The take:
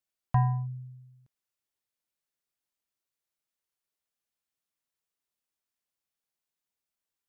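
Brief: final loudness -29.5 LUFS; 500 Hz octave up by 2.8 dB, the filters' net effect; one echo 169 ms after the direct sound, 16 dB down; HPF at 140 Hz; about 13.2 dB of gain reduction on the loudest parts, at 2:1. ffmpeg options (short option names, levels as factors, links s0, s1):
-af "highpass=140,equalizer=f=500:t=o:g=5.5,acompressor=threshold=0.00501:ratio=2,aecho=1:1:169:0.158,volume=5.96"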